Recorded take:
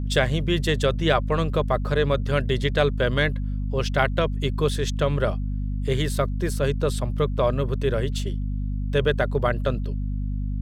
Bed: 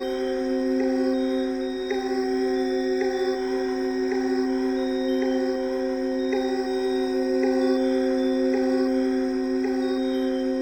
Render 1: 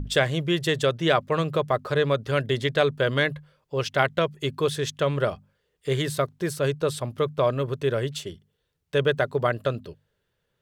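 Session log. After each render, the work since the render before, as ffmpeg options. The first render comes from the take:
-af "bandreject=f=50:t=h:w=6,bandreject=f=100:t=h:w=6,bandreject=f=150:t=h:w=6,bandreject=f=200:t=h:w=6,bandreject=f=250:t=h:w=6"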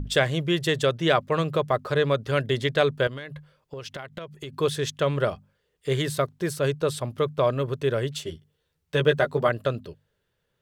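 -filter_complex "[0:a]asettb=1/sr,asplit=3[a][b][c];[a]atrim=end=3.074[d];[b]atrim=start=3.07:end=4.53,asetpts=PTS-STARTPTS,afade=t=in:d=0.004:c=qsin,afade=t=out:st=1.456:d=0.004:c=qsin,acompressor=threshold=-32dB:ratio=16:attack=3.2:release=140:knee=1:detection=peak[e];[c]atrim=start=4.526[f];[d][e]acrossfade=d=0.004:c1=hsin:c2=qsin[g];[g][f]acrossfade=d=0.004:c1=qsin:c2=hsin,asettb=1/sr,asplit=3[h][i][j];[h]atrim=end=8.244[k];[i]atrim=start=8.24:end=9.49,asetpts=PTS-STARTPTS,afade=t=in:d=0.004:c=qsin,afade=t=out:st=1.246:d=0.004:c=qsin,asplit=2[l][m];[m]adelay=13,volume=-4dB[n];[l][n]amix=inputs=2:normalize=0,atrim=end_sample=55125[o];[j]atrim=start=9.486[p];[k][o]acrossfade=d=0.004:c1=hsin:c2=qsin[q];[q][p]acrossfade=d=0.004:c1=qsin:c2=hsin"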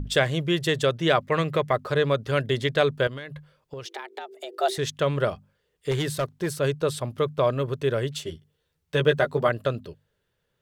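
-filter_complex "[0:a]asettb=1/sr,asplit=3[a][b][c];[a]atrim=end=1.244[d];[b]atrim=start=1.24:end=1.73,asetpts=PTS-STARTPTS,afade=t=in:d=0.004:c=qsin,afade=t=out:st=0.486:d=0.004:c=qsin,equalizer=f=2k:t=o:w=0.44:g=10[e];[c]atrim=start=1.726[f];[d][e]acrossfade=d=0.004:c1=hsin:c2=qsin[g];[g][f]acrossfade=d=0.004:c1=qsin:c2=hsin,asettb=1/sr,asplit=3[h][i][j];[h]atrim=end=3.854[k];[i]atrim=start=3.85:end=4.78,asetpts=PTS-STARTPTS,afade=t=in:d=0.004:c=qsin,afade=t=out:st=0.926:d=0.004:c=qsin,afreqshift=240[l];[j]atrim=start=4.776[m];[k][l]acrossfade=d=0.004:c1=hsin:c2=qsin[n];[n][m]acrossfade=d=0.004:c1=qsin:c2=hsin,asettb=1/sr,asplit=3[o][p][q];[o]atrim=end=5.914[r];[p]atrim=start=5.91:end=6.5,asetpts=PTS-STARTPTS,afade=t=in:d=0.004:c=qsin,afade=t=out:st=0.586:d=0.004:c=qsin,asoftclip=type=hard:threshold=-20.5dB[s];[q]atrim=start=6.496[t];[r][s]acrossfade=d=0.004:c1=hsin:c2=qsin[u];[u][t]acrossfade=d=0.004:c1=qsin:c2=hsin"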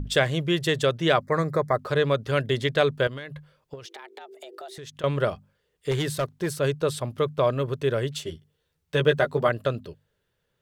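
-filter_complex "[0:a]asettb=1/sr,asplit=3[a][b][c];[a]atrim=end=1.214[d];[b]atrim=start=1.21:end=1.79,asetpts=PTS-STARTPTS,afade=t=in:d=0.004:c=qsin,afade=t=out:st=0.576:d=0.004:c=qsin,asuperstop=centerf=2900:order=4:qfactor=1.2[e];[c]atrim=start=1.786[f];[d][e]acrossfade=d=0.004:c1=hsin:c2=qsin[g];[g][f]acrossfade=d=0.004:c1=qsin:c2=hsin,asettb=1/sr,asplit=3[h][i][j];[h]atrim=end=3.754[k];[i]atrim=start=3.75:end=5.04,asetpts=PTS-STARTPTS,afade=t=in:d=0.004:c=qsin,afade=t=out:st=1.286:d=0.004:c=qsin,acompressor=threshold=-38dB:ratio=6:attack=3.2:release=140:knee=1:detection=peak[l];[j]atrim=start=5.036[m];[k][l]acrossfade=d=0.004:c1=hsin:c2=qsin[n];[n][m]acrossfade=d=0.004:c1=qsin:c2=hsin"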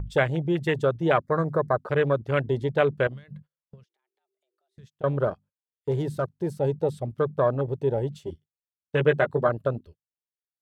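-af "afwtdn=0.0447,agate=range=-22dB:threshold=-48dB:ratio=16:detection=peak"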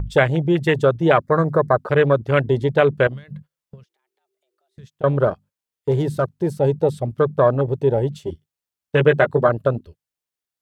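-af "volume=7dB,alimiter=limit=-2dB:level=0:latency=1"

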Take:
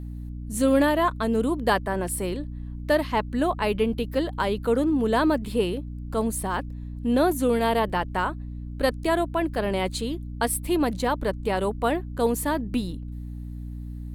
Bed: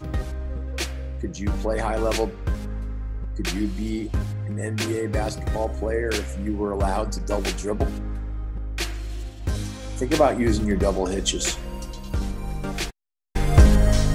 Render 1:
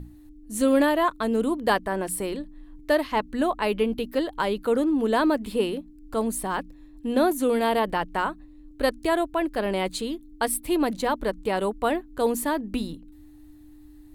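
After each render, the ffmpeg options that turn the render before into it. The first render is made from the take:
-af "bandreject=f=60:t=h:w=6,bandreject=f=120:t=h:w=6,bandreject=f=180:t=h:w=6,bandreject=f=240:t=h:w=6"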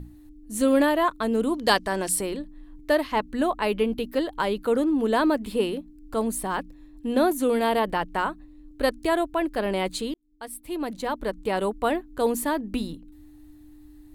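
-filter_complex "[0:a]asettb=1/sr,asplit=3[a][b][c];[a]atrim=end=1.544[d];[b]atrim=start=1.54:end=2.21,asetpts=PTS-STARTPTS,afade=t=in:d=0.004:c=qsin,afade=t=out:st=0.666:d=0.004:c=qsin,equalizer=f=5.4k:w=0.73:g=12.5[e];[c]atrim=start=2.206[f];[d][e]acrossfade=d=0.004:c1=hsin:c2=qsin[g];[g][f]acrossfade=d=0.004:c1=qsin:c2=hsin,asplit=2[h][i];[h]atrim=end=10.14,asetpts=PTS-STARTPTS,afade=t=out:st=10.136:d=0.004:c=hsin[j];[i]atrim=start=10.14,asetpts=PTS-STARTPTS,afade=t=in:d=1.43[k];[j][k]concat=n=2:v=0:a=1"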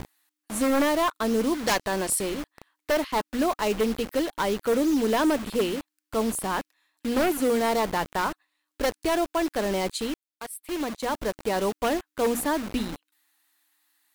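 -filter_complex "[0:a]acrossover=split=990[a][b];[a]acrusher=bits=5:mix=0:aa=0.000001[c];[c][b]amix=inputs=2:normalize=0,aeval=exprs='0.15*(abs(mod(val(0)/0.15+3,4)-2)-1)':c=same"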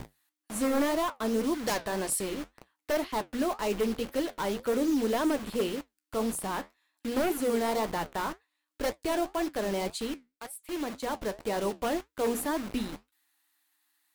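-filter_complex "[0:a]flanger=delay=7.2:depth=7.9:regen=-67:speed=1.9:shape=triangular,acrossover=split=830|5600[a][b][c];[b]asoftclip=type=tanh:threshold=-30.5dB[d];[a][d][c]amix=inputs=3:normalize=0"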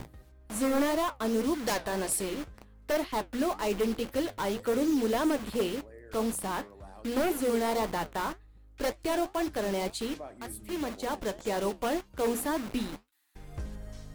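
-filter_complex "[1:a]volume=-25.5dB[a];[0:a][a]amix=inputs=2:normalize=0"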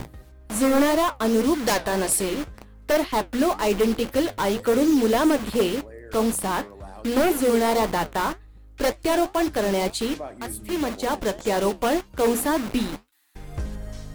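-af "volume=8dB"

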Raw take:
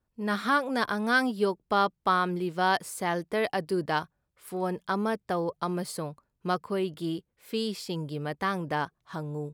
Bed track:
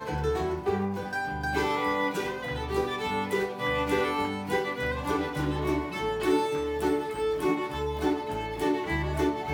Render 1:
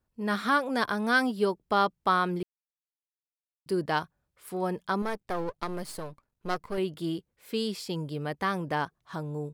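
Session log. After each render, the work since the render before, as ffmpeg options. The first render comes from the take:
-filter_complex "[0:a]asettb=1/sr,asplit=3[a][b][c];[a]atrim=end=5.024[d];[b]atrim=start=5.02:end=6.78,asetpts=PTS-STARTPTS,afade=t=in:d=0.004:c=qsin,afade=t=out:st=1.756:d=0.004:c=qsin,aeval=exprs='if(lt(val(0),0),0.251*val(0),val(0))':c=same[e];[c]atrim=start=6.776[f];[d][e]acrossfade=d=0.004:c1=hsin:c2=qsin[g];[g][f]acrossfade=d=0.004:c1=qsin:c2=hsin,asplit=3[h][i][j];[h]atrim=end=2.43,asetpts=PTS-STARTPTS,afade=t=out:st=2.426:d=0.004:c=hsin[k];[i]atrim=start=2.43:end=3.66,asetpts=PTS-STARTPTS,volume=0[l];[j]atrim=start=3.66,asetpts=PTS-STARTPTS,afade=t=in:d=0.004:c=hsin[m];[k][l][m]concat=n=3:v=0:a=1"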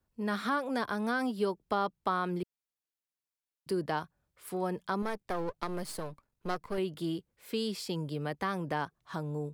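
-filter_complex "[0:a]acrossover=split=170|1200[a][b][c];[c]alimiter=level_in=2.5dB:limit=-24dB:level=0:latency=1:release=14,volume=-2.5dB[d];[a][b][d]amix=inputs=3:normalize=0,acompressor=threshold=-34dB:ratio=1.5"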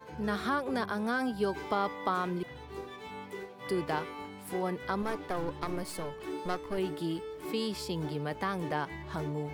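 -filter_complex "[1:a]volume=-14dB[a];[0:a][a]amix=inputs=2:normalize=0"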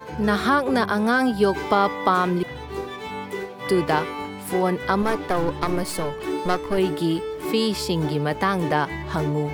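-af "volume=11.5dB"

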